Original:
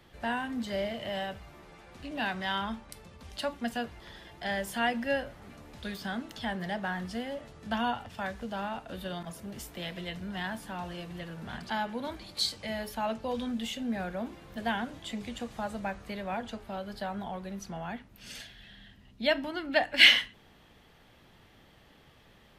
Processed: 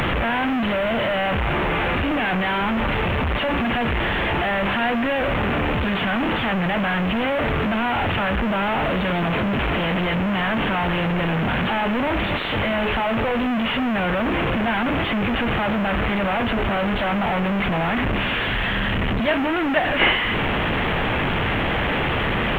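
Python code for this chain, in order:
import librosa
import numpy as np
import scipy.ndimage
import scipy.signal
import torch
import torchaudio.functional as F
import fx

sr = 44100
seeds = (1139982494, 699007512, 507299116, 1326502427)

y = fx.delta_mod(x, sr, bps=16000, step_db=-20.0)
y = fx.quant_dither(y, sr, seeds[0], bits=10, dither='none')
y = F.gain(torch.from_numpy(y), 5.0).numpy()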